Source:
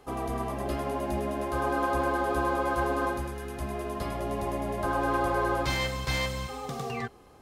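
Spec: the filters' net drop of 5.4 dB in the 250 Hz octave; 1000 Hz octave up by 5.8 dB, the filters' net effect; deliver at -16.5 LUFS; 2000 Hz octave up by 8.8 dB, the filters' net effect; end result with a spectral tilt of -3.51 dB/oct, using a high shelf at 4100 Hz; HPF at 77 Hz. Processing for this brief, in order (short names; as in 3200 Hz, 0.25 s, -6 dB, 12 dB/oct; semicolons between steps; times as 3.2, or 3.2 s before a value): HPF 77 Hz; bell 250 Hz -8.5 dB; bell 1000 Hz +5 dB; bell 2000 Hz +9 dB; high shelf 4100 Hz +3.5 dB; gain +9.5 dB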